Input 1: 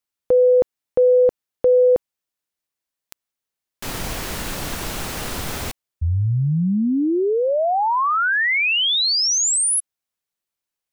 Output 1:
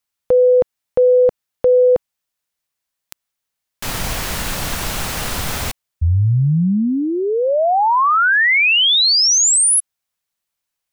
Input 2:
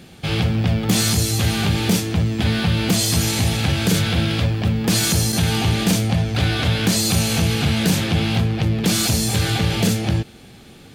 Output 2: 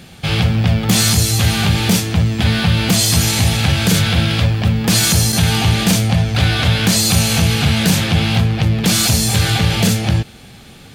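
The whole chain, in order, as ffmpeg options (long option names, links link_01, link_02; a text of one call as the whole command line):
ffmpeg -i in.wav -af "equalizer=frequency=340:width=1.2:gain=-6,volume=5.5dB" out.wav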